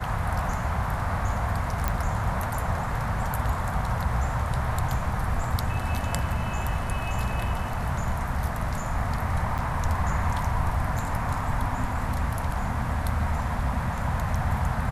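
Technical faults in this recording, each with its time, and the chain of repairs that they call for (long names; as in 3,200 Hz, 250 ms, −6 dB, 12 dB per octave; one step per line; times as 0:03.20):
0:01.88: click −11 dBFS
0:09.58–0:09.59: drop-out 7.5 ms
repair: click removal
repair the gap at 0:09.58, 7.5 ms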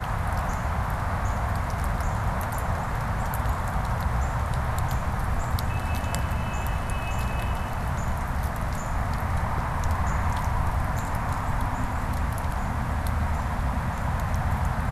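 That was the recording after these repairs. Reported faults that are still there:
none of them is left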